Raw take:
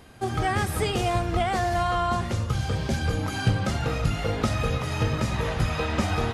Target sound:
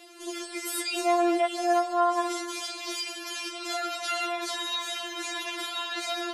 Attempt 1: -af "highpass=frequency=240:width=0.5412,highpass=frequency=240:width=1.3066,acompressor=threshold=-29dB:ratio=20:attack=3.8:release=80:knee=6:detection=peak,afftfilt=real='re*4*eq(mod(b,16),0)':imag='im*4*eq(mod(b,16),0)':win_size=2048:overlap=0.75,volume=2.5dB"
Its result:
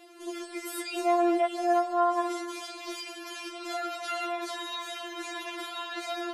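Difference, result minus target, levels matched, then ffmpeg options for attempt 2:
8,000 Hz band −5.5 dB
-af "highpass=frequency=240:width=0.5412,highpass=frequency=240:width=1.3066,acompressor=threshold=-29dB:ratio=20:attack=3.8:release=80:knee=6:detection=peak,equalizer=frequency=6400:width=0.33:gain=8,afftfilt=real='re*4*eq(mod(b,16),0)':imag='im*4*eq(mod(b,16),0)':win_size=2048:overlap=0.75,volume=2.5dB"

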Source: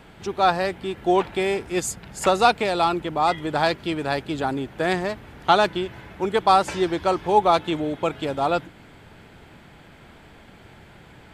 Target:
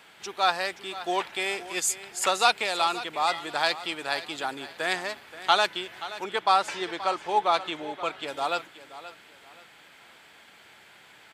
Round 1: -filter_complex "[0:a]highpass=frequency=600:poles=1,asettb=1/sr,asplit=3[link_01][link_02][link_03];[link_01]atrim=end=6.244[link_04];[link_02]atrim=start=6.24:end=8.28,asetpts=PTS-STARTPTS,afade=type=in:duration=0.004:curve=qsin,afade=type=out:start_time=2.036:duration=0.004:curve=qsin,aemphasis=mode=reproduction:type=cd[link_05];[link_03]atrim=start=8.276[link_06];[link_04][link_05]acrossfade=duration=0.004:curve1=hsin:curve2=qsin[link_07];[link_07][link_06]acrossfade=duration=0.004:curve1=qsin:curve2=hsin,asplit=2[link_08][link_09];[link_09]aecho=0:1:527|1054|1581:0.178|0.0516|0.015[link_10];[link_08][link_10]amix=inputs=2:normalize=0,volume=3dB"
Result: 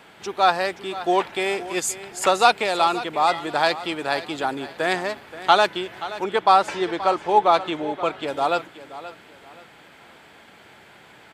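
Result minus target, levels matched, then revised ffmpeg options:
500 Hz band +3.0 dB
-filter_complex "[0:a]highpass=frequency=2100:poles=1,asettb=1/sr,asplit=3[link_01][link_02][link_03];[link_01]atrim=end=6.244[link_04];[link_02]atrim=start=6.24:end=8.28,asetpts=PTS-STARTPTS,afade=type=in:duration=0.004:curve=qsin,afade=type=out:start_time=2.036:duration=0.004:curve=qsin,aemphasis=mode=reproduction:type=cd[link_05];[link_03]atrim=start=8.276[link_06];[link_04][link_05]acrossfade=duration=0.004:curve1=hsin:curve2=qsin[link_07];[link_07][link_06]acrossfade=duration=0.004:curve1=qsin:curve2=hsin,asplit=2[link_08][link_09];[link_09]aecho=0:1:527|1054|1581:0.178|0.0516|0.015[link_10];[link_08][link_10]amix=inputs=2:normalize=0,volume=3dB"

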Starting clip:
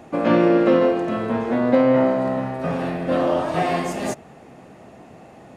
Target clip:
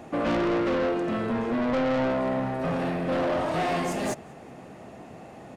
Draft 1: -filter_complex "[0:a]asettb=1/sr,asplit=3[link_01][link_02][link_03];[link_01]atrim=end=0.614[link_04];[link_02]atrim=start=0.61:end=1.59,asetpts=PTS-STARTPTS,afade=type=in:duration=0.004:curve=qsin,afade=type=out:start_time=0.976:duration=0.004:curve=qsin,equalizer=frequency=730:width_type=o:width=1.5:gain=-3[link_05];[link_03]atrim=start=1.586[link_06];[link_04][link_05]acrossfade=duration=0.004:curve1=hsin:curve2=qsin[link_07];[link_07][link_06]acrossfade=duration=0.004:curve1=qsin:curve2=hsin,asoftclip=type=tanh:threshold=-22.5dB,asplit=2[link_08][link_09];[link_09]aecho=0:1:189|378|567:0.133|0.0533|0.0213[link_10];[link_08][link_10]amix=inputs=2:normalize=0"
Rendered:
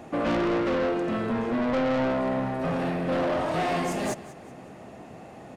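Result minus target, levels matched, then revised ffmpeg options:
echo-to-direct +11 dB
-filter_complex "[0:a]asettb=1/sr,asplit=3[link_01][link_02][link_03];[link_01]atrim=end=0.614[link_04];[link_02]atrim=start=0.61:end=1.59,asetpts=PTS-STARTPTS,afade=type=in:duration=0.004:curve=qsin,afade=type=out:start_time=0.976:duration=0.004:curve=qsin,equalizer=frequency=730:width_type=o:width=1.5:gain=-3[link_05];[link_03]atrim=start=1.586[link_06];[link_04][link_05]acrossfade=duration=0.004:curve1=hsin:curve2=qsin[link_07];[link_07][link_06]acrossfade=duration=0.004:curve1=qsin:curve2=hsin,asoftclip=type=tanh:threshold=-22.5dB,asplit=2[link_08][link_09];[link_09]aecho=0:1:189|378:0.0376|0.015[link_10];[link_08][link_10]amix=inputs=2:normalize=0"

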